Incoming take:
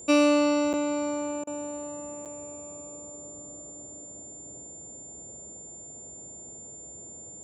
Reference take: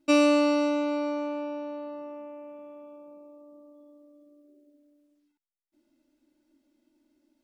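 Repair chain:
notch filter 7,200 Hz, Q 30
repair the gap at 0:00.73/0:02.25, 7.7 ms
repair the gap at 0:01.44, 30 ms
noise reduction from a noise print 28 dB

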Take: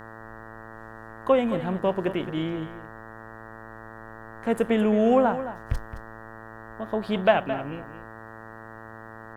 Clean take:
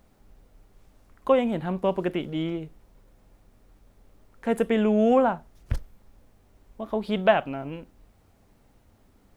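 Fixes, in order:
hum removal 111.5 Hz, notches 17
echo removal 218 ms −12 dB

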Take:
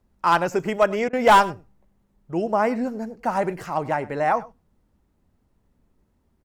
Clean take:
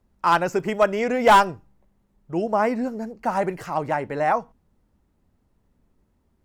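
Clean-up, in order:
repair the gap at 0:01.09, 40 ms
echo removal 100 ms −20 dB

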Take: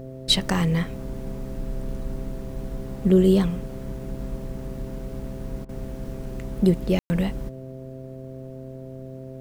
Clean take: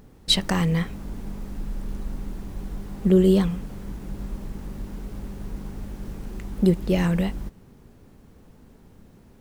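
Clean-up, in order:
hum removal 131.2 Hz, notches 5
ambience match 0:06.99–0:07.10
repair the gap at 0:05.65, 38 ms

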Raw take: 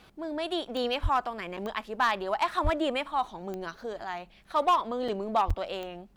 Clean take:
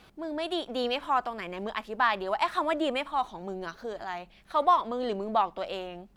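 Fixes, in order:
clipped peaks rebuilt −17.5 dBFS
click removal
high-pass at the plosives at 0:01.02/0:02.63/0:05.47
repair the gap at 0:01.57/0:05.08/0:05.50, 4.9 ms

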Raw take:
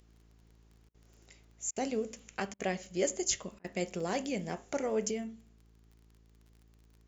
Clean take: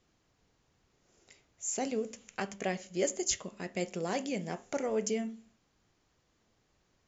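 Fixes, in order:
click removal
hum removal 55.4 Hz, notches 8
repair the gap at 0:00.89/0:01.71/0:02.54/0:03.59, 52 ms
level 0 dB, from 0:05.11 +3.5 dB

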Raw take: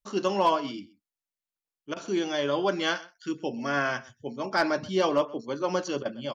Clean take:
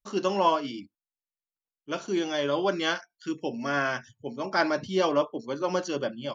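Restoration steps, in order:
clipped peaks rebuilt −14 dBFS
repair the gap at 0:01.94/0:06.03, 22 ms
echo removal 127 ms −21 dB

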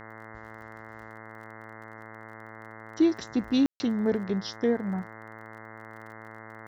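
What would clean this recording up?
click removal
hum removal 110.6 Hz, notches 19
ambience match 0:03.66–0:03.80

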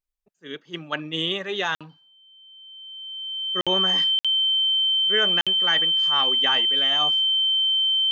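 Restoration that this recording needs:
notch filter 3,100 Hz, Q 30
repair the gap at 0:01.75/0:03.61/0:04.19/0:05.41, 56 ms

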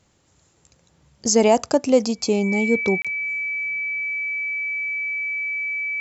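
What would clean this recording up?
notch filter 2,300 Hz, Q 30
repair the gap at 0:03.02, 26 ms

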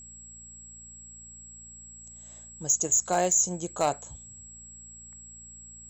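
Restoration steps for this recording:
clipped peaks rebuilt −15.5 dBFS
hum removal 57.6 Hz, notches 4
notch filter 7,700 Hz, Q 30

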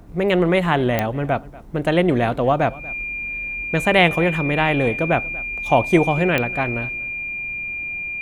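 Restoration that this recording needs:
click removal
notch filter 2,400 Hz, Q 30
echo removal 238 ms −21 dB

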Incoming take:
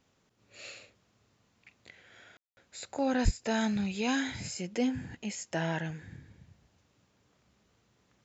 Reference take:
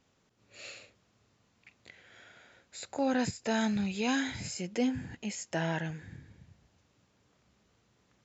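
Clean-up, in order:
0:03.24–0:03.36: high-pass filter 140 Hz 24 dB per octave
ambience match 0:02.37–0:02.57

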